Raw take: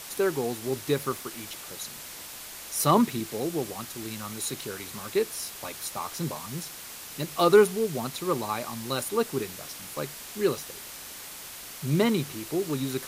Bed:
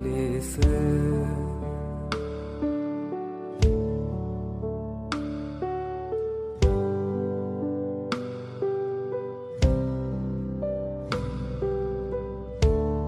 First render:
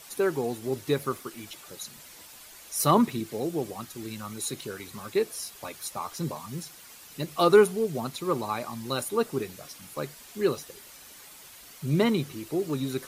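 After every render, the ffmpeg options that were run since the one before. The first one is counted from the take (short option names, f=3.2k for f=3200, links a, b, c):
-af "afftdn=nr=9:nf=-42"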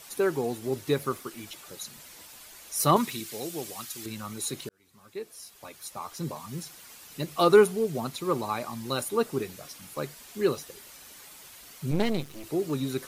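-filter_complex "[0:a]asettb=1/sr,asplit=3[a][b][c];[a]atrim=end=2.964[d];[b]atrim=start=2.96:end=4.06,asetpts=PTS-STARTPTS,afade=t=in:d=0.004:c=qsin,afade=t=out:st=1.096:d=0.004:c=qsin,tiltshelf=f=1.4k:g=-7.5[e];[c]atrim=start=4.056[f];[d][e]acrossfade=d=0.004:c1=hsin:c2=qsin[g];[g][f]acrossfade=d=0.004:c1=qsin:c2=hsin,asettb=1/sr,asplit=3[h][i][j];[h]atrim=end=11.914[k];[i]atrim=start=11.91:end=12.44,asetpts=PTS-STARTPTS,afade=t=in:d=0.004:c=qsin,afade=t=out:st=0.526:d=0.004:c=qsin,aeval=exprs='max(val(0),0)':c=same[l];[j]atrim=start=12.436[m];[k][l]acrossfade=d=0.004:c1=hsin:c2=qsin[n];[n][m]acrossfade=d=0.004:c1=qsin:c2=hsin,asplit=2[o][p];[o]atrim=end=4.69,asetpts=PTS-STARTPTS,afade=t=out:st=4.686:d=0.004:c=hsin[q];[p]atrim=start=4.69,asetpts=PTS-STARTPTS,afade=t=in:d=1.99[r];[q][r]concat=n=2:v=0:a=1"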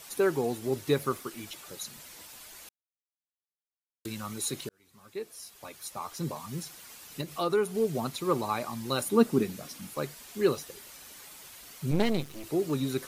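-filter_complex "[0:a]asettb=1/sr,asplit=3[a][b][c];[a]atrim=end=7.214[d];[b]atrim=start=7.21:end=7.75,asetpts=PTS-STARTPTS,afade=t=in:d=0.004:c=qsin,afade=t=out:st=0.536:d=0.004:c=qsin,acompressor=threshold=-39dB:ratio=1.5:attack=3.2:release=140:knee=1:detection=peak[e];[c]atrim=start=7.746[f];[d][e]acrossfade=d=0.004:c1=hsin:c2=qsin[g];[g][f]acrossfade=d=0.004:c1=qsin:c2=hsin,asettb=1/sr,asplit=3[h][i][j];[h]atrim=end=9.044[k];[i]atrim=start=9.04:end=9.9,asetpts=PTS-STARTPTS,afade=t=in:d=0.004:c=qsin,afade=t=out:st=0.856:d=0.004:c=qsin,equalizer=f=220:w=1.5:g=10.5[l];[j]atrim=start=9.896[m];[k][l]acrossfade=d=0.004:c1=hsin:c2=qsin[n];[n][m]acrossfade=d=0.004:c1=qsin:c2=hsin,asplit=3[o][p][q];[o]atrim=end=2.69,asetpts=PTS-STARTPTS,afade=t=out:st=2.686:d=0.004:c=hsin[r];[p]atrim=start=2.69:end=4.05,asetpts=PTS-STARTPTS,volume=0[s];[q]atrim=start=4.05,asetpts=PTS-STARTPTS,afade=t=in:d=0.004:c=hsin[t];[r][s][t]concat=n=3:v=0:a=1"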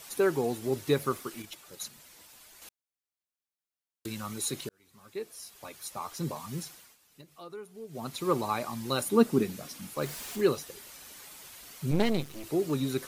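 -filter_complex "[0:a]asettb=1/sr,asplit=3[a][b][c];[a]atrim=end=1.424[d];[b]atrim=start=1.42:end=2.62,asetpts=PTS-STARTPTS,afade=t=in:d=0.004:c=qsin,afade=t=out:st=1.196:d=0.004:c=qsin,agate=range=-6dB:threshold=-43dB:ratio=16:release=100:detection=peak[e];[c]atrim=start=2.616[f];[d][e]acrossfade=d=0.004:c1=hsin:c2=qsin[g];[g][f]acrossfade=d=0.004:c1=qsin:c2=hsin,asettb=1/sr,asplit=3[h][i][j];[h]atrim=end=10.014[k];[i]atrim=start=10.01:end=10.41,asetpts=PTS-STARTPTS,afade=t=in:d=0.004:c=qsin,afade=t=out:st=0.396:d=0.004:c=qsin,aeval=exprs='val(0)+0.5*0.0112*sgn(val(0))':c=same[l];[j]atrim=start=10.406[m];[k][l]acrossfade=d=0.004:c1=hsin:c2=qsin[n];[n][m]acrossfade=d=0.004:c1=qsin:c2=hsin,asplit=3[o][p][q];[o]atrim=end=6.97,asetpts=PTS-STARTPTS,afade=t=out:st=6.63:d=0.34:silence=0.149624[r];[p]atrim=start=6.97:end=7.88,asetpts=PTS-STARTPTS,volume=-16.5dB[s];[q]atrim=start=7.88,asetpts=PTS-STARTPTS,afade=t=in:d=0.34:silence=0.149624[t];[r][s][t]concat=n=3:v=0:a=1"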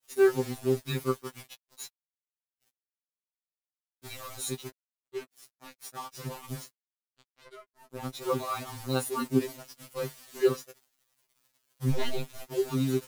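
-af "acrusher=bits=5:mix=0:aa=0.5,afftfilt=real='re*2.45*eq(mod(b,6),0)':imag='im*2.45*eq(mod(b,6),0)':win_size=2048:overlap=0.75"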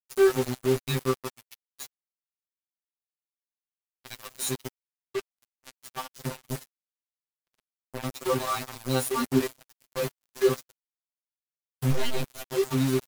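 -filter_complex "[0:a]asplit=2[a][b];[b]asoftclip=type=tanh:threshold=-27.5dB,volume=-3dB[c];[a][c]amix=inputs=2:normalize=0,acrusher=bits=4:mix=0:aa=0.5"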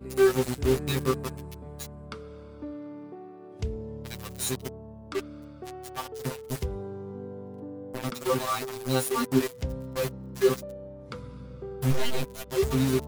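-filter_complex "[1:a]volume=-11dB[a];[0:a][a]amix=inputs=2:normalize=0"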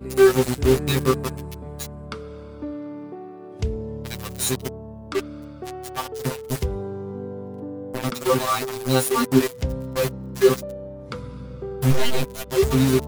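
-af "volume=6.5dB"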